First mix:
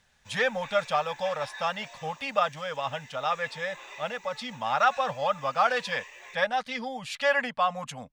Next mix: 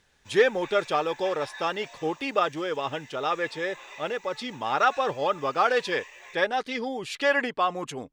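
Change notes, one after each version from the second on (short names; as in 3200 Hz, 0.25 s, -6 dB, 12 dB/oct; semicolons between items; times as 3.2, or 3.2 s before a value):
speech: remove Chebyshev band-stop 220–580 Hz, order 2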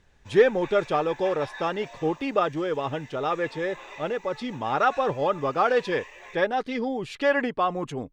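background +3.5 dB; master: add tilt -2.5 dB/oct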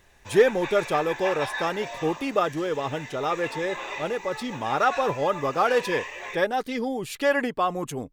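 speech: remove LPF 4400 Hz 12 dB/oct; background +9.0 dB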